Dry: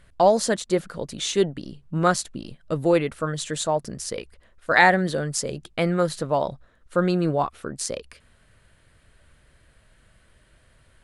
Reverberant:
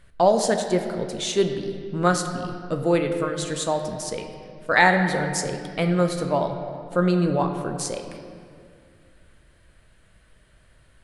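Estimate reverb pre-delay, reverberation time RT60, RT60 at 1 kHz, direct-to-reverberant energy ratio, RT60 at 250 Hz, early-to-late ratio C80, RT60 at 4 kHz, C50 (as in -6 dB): 10 ms, 2.2 s, 2.1 s, 5.5 dB, 2.8 s, 7.5 dB, 1.5 s, 7.0 dB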